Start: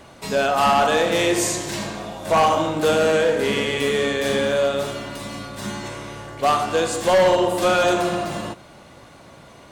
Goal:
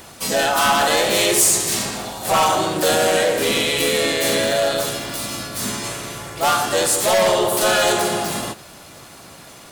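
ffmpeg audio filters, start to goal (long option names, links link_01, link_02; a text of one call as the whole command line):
ffmpeg -i in.wav -filter_complex "[0:a]asplit=2[link_01][link_02];[link_02]asetrate=52444,aresample=44100,atempo=0.840896,volume=-1dB[link_03];[link_01][link_03]amix=inputs=2:normalize=0,crystalizer=i=3:c=0,acontrast=82,volume=-8dB" out.wav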